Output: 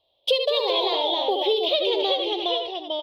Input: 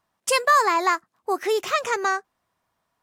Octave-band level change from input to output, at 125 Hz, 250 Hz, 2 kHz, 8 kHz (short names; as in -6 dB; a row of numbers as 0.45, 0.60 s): n/a, +3.0 dB, -11.5 dB, under -20 dB